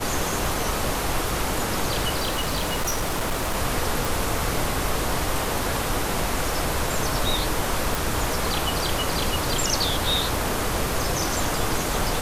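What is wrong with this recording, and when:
crackle 14/s -29 dBFS
2.18–3.55 clipped -20.5 dBFS
4.05 pop
7.95 pop

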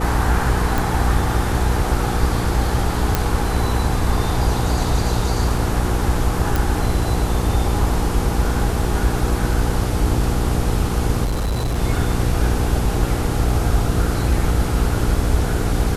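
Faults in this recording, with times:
hum 60 Hz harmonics 8 -23 dBFS
0.78 pop
3.15 pop
6.56 pop
11.24–11.79 clipped -17.5 dBFS

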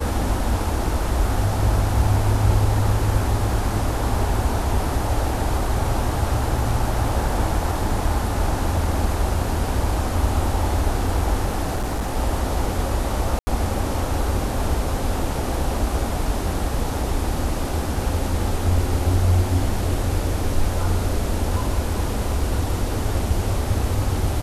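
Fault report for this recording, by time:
11.75–12.17 clipped -20 dBFS
13.39–13.47 gap 80 ms

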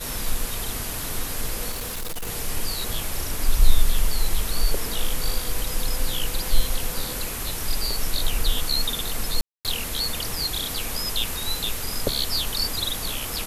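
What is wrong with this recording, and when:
1.71–2.29 clipped -26 dBFS
9.41–9.65 gap 0.238 s

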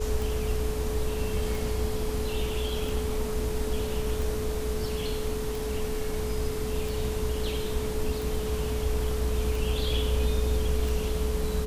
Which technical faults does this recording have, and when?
tick 45 rpm
tone 430 Hz -32 dBFS

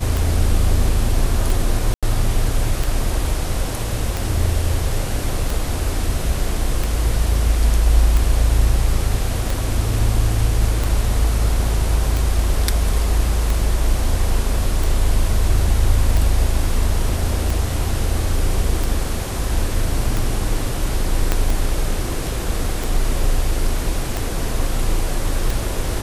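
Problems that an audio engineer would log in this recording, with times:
tick 45 rpm
1.94–2.03 gap 86 ms
21.32 pop -3 dBFS

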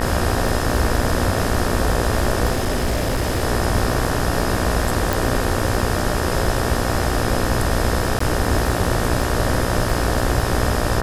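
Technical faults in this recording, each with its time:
buzz 60 Hz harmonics 31 -24 dBFS
crackle 31/s -24 dBFS
2.51–3.44 clipped -15.5 dBFS
5.13 pop
8.19–8.2 gap 14 ms

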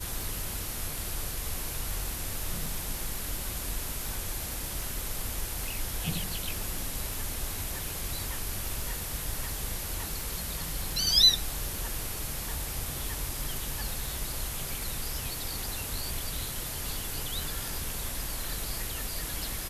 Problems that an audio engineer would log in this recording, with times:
tick 78 rpm
2.66 gap 2.4 ms

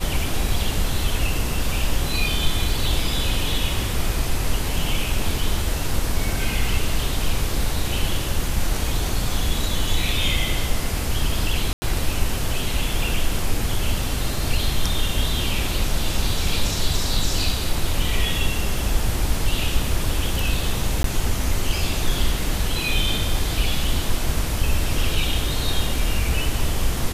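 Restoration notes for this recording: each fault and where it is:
11.73–11.82 gap 90 ms
21.03–21.04 gap

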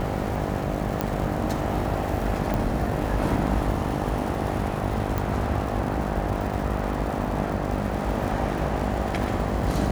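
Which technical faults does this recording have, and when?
buzz 50 Hz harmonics 16 -30 dBFS
crackle 190/s -32 dBFS
1.01 pop -10 dBFS
2.54 pop
5.18 pop

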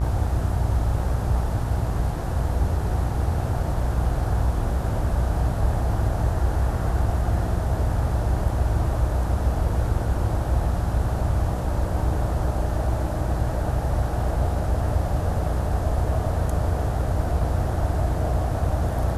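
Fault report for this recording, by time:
buzz 60 Hz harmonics 31 -27 dBFS

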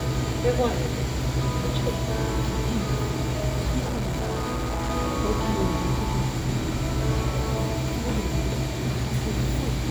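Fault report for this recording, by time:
3.84–4.91 clipped -24 dBFS

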